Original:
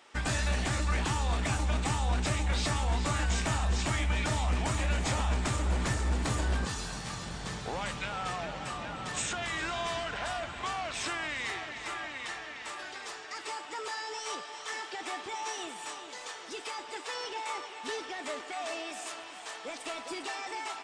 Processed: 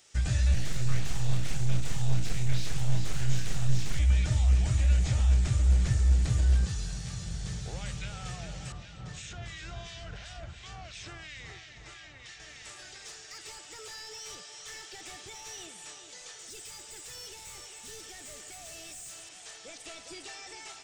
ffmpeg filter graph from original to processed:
-filter_complex "[0:a]asettb=1/sr,asplit=3[a][b][c];[a]atrim=end=0.544[d];[b]atrim=start=0.54:end=3.99,asetpts=PTS-STARTPTS,afade=t=in:d=0.004:c=qsin,afade=t=out:st=3.446:d=0.004:c=qsin,asplit=2[e][f];[f]adelay=29,volume=-5dB[g];[e][g]amix=inputs=2:normalize=0,atrim=end_sample=152145,aeval=exprs='abs(val(0))':c=same[h];[c]atrim=start=3.986[i];[d][h]acrossfade=d=0.004:c1=hsin:c2=qsin[j];[j][i]acrossfade=d=0.004:c1=qsin:c2=hsin,asettb=1/sr,asplit=3[k][l][m];[k]atrim=end=8.724[n];[l]atrim=start=8.72:end=12.4,asetpts=PTS-STARTPTS,afade=t=in:d=0.004:c=qsin,afade=t=out:st=3.676:d=0.004:c=qsin,lowpass=4.5k,acrossover=split=1700[o][p];[o]aeval=exprs='val(0)*(1-0.7/2+0.7/2*cos(2*PI*2.9*n/s))':c=same[q];[p]aeval=exprs='val(0)*(1-0.7/2-0.7/2*cos(2*PI*2.9*n/s))':c=same[r];[q][r]amix=inputs=2:normalize=0[s];[m]atrim=start=12.396[t];[n][s]acrossfade=d=0.004:c1=hsin:c2=qsin[u];[u][t]acrossfade=d=0.004:c1=qsin:c2=hsin,asettb=1/sr,asplit=3[v][w][x];[v]atrim=end=13.054[y];[w]atrim=start=13.05:end=15.67,asetpts=PTS-STARTPTS,afade=t=in:d=0.004:c=qsin,afade=t=out:st=2.616:d=0.004:c=qsin,highshelf=f=5.4k:g=5,volume=33.5dB,asoftclip=hard,volume=-33.5dB[z];[x]atrim=start=15.666[aa];[y][z]acrossfade=d=0.004:c1=hsin:c2=qsin[ab];[ab][aa]acrossfade=d=0.004:c1=qsin:c2=hsin,asettb=1/sr,asplit=3[ac][ad][ae];[ac]atrim=end=16.394[af];[ad]atrim=start=16.39:end=19.29,asetpts=PTS-STARTPTS,afade=t=in:d=0.004:c=qsin,afade=t=out:st=2.896:d=0.004:c=qsin,equalizer=f=8.3k:w=1.3:g=14.5,asoftclip=type=hard:threshold=-38dB[ag];[ae]atrim=start=19.286[ah];[af][ag]acrossfade=d=0.004:c1=hsin:c2=qsin[ai];[ai][ah]acrossfade=d=0.004:c1=qsin:c2=hsin,equalizer=f=250:t=o:w=0.67:g=-11,equalizer=f=1k:t=o:w=0.67:g=-9,equalizer=f=6.3k:t=o:w=0.67:g=5,acrossover=split=3800[aj][ak];[ak]acompressor=threshold=-51dB:ratio=4:attack=1:release=60[al];[aj][al]amix=inputs=2:normalize=0,bass=f=250:g=15,treble=f=4k:g=13,volume=-7dB"

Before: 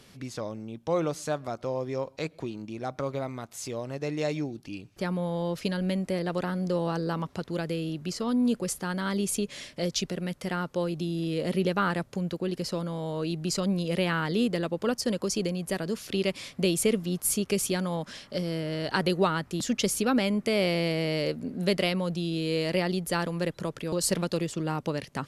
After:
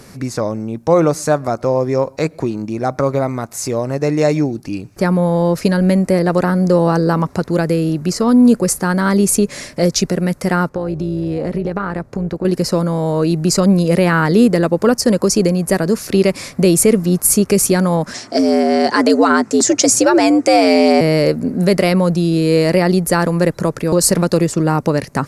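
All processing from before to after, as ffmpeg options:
-filter_complex "[0:a]asettb=1/sr,asplit=3[a][b][c];[a]atrim=end=10.694[d];[b]atrim=start=10.69:end=12.45,asetpts=PTS-STARTPTS,afade=t=in:d=0.004:c=qsin,afade=t=out:st=1.756:d=0.004:c=qsin,lowpass=f=2.4k:p=1,acompressor=threshold=-29dB:ratio=6:attack=3.2:release=140:knee=1:detection=peak,tremolo=f=230:d=0.462[e];[c]atrim=start=12.446[f];[d][e]acrossfade=d=0.004:c1=hsin:c2=qsin[g];[g][f]acrossfade=d=0.004:c1=qsin:c2=hsin,asettb=1/sr,asplit=3[h][i][j];[h]atrim=end=18.144[k];[i]atrim=start=18.14:end=21.01,asetpts=PTS-STARTPTS,afade=t=in:d=0.004:c=qsin,afade=t=out:st=2.866:d=0.004:c=qsin,lowpass=f=7.1k:t=q:w=2,aecho=1:1:6.3:0.38,atrim=end_sample=126567,afreqshift=90[l];[j]atrim=start=21.006[m];[k][l]acrossfade=d=0.004:c1=hsin:c2=qsin[n];[n][m]acrossfade=d=0.004:c1=qsin:c2=hsin,equalizer=f=3.2k:t=o:w=0.64:g=-14,alimiter=level_in=16.5dB:limit=-1dB:release=50:level=0:latency=1,volume=-1dB"

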